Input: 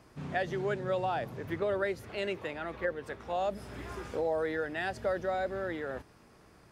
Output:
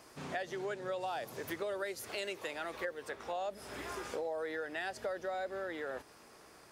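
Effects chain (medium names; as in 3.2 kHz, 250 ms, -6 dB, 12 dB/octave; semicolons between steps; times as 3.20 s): tone controls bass -13 dB, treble +7 dB, from 1.00 s treble +14 dB, from 3.02 s treble +5 dB; compression 3:1, threshold -41 dBFS, peak gain reduction 10.5 dB; trim +3 dB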